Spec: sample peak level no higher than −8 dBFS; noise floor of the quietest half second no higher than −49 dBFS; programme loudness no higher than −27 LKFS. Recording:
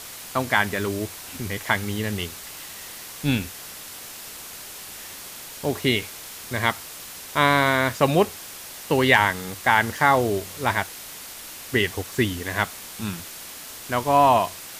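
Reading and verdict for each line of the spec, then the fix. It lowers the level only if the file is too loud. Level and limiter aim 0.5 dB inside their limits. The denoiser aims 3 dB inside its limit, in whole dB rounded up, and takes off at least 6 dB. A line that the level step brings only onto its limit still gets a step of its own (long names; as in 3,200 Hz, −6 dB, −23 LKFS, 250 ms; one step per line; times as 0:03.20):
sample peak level −3.5 dBFS: out of spec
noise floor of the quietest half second −39 dBFS: out of spec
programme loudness −23.0 LKFS: out of spec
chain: broadband denoise 9 dB, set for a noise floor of −39 dBFS
level −4.5 dB
brickwall limiter −8.5 dBFS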